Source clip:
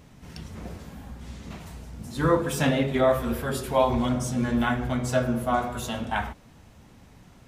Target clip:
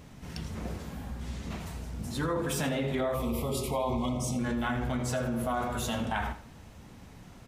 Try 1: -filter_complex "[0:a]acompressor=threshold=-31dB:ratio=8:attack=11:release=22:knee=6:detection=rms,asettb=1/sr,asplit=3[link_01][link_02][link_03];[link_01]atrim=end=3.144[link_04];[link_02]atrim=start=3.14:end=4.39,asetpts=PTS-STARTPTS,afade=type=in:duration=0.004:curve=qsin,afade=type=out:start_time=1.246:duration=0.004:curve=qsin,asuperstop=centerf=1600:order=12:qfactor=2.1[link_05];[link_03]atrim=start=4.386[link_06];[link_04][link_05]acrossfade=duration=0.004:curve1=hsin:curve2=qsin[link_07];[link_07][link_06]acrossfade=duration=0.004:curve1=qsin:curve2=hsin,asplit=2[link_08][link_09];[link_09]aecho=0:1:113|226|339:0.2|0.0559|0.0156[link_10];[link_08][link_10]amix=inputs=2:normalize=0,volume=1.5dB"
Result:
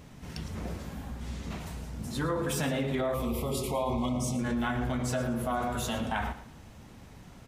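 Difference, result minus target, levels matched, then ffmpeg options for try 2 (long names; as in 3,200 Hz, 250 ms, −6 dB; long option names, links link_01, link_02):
echo 31 ms late
-filter_complex "[0:a]acompressor=threshold=-31dB:ratio=8:attack=11:release=22:knee=6:detection=rms,asettb=1/sr,asplit=3[link_01][link_02][link_03];[link_01]atrim=end=3.144[link_04];[link_02]atrim=start=3.14:end=4.39,asetpts=PTS-STARTPTS,afade=type=in:duration=0.004:curve=qsin,afade=type=out:start_time=1.246:duration=0.004:curve=qsin,asuperstop=centerf=1600:order=12:qfactor=2.1[link_05];[link_03]atrim=start=4.386[link_06];[link_04][link_05]acrossfade=duration=0.004:curve1=hsin:curve2=qsin[link_07];[link_07][link_06]acrossfade=duration=0.004:curve1=qsin:curve2=hsin,asplit=2[link_08][link_09];[link_09]aecho=0:1:82|164|246:0.2|0.0559|0.0156[link_10];[link_08][link_10]amix=inputs=2:normalize=0,volume=1.5dB"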